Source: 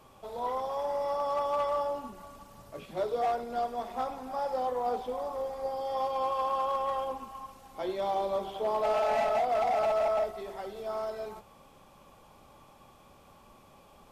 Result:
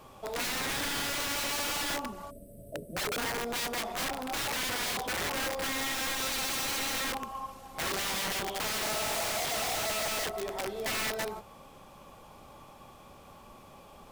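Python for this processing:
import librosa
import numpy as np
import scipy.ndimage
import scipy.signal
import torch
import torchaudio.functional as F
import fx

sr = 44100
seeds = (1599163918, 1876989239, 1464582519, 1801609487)

y = fx.spec_erase(x, sr, start_s=2.31, length_s=1.06, low_hz=700.0, high_hz=7900.0)
y = fx.quant_companded(y, sr, bits=8)
y = (np.mod(10.0 ** (32.5 / 20.0) * y + 1.0, 2.0) - 1.0) / 10.0 ** (32.5 / 20.0)
y = F.gain(torch.from_numpy(y), 4.5).numpy()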